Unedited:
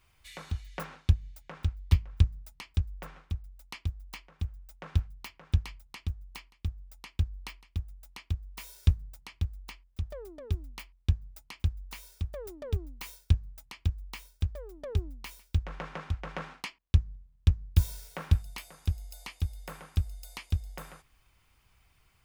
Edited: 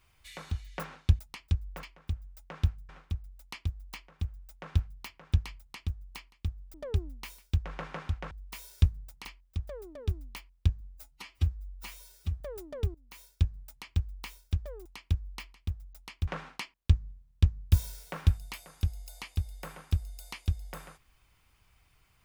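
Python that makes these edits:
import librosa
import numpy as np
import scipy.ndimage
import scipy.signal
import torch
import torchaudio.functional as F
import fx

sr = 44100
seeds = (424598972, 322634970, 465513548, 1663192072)

y = fx.edit(x, sr, fx.cut(start_s=1.19, length_s=1.26),
    fx.duplicate(start_s=4.15, length_s=1.06, to_s=3.09),
    fx.swap(start_s=6.94, length_s=1.42, other_s=14.75, other_length_s=1.57),
    fx.cut(start_s=9.3, length_s=0.38),
    fx.stretch_span(start_s=11.23, length_s=1.07, factor=1.5),
    fx.fade_in_from(start_s=12.84, length_s=0.9, curve='qsin', floor_db=-22.5), tone=tone)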